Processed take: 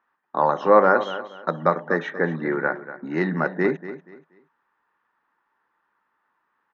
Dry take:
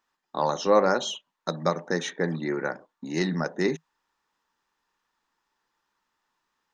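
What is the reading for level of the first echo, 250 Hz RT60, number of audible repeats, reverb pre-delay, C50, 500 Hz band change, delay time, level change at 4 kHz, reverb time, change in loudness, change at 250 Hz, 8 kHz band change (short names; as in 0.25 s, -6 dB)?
-13.5 dB, none, 2, none, none, +4.5 dB, 0.239 s, -8.0 dB, none, +4.5 dB, +3.0 dB, n/a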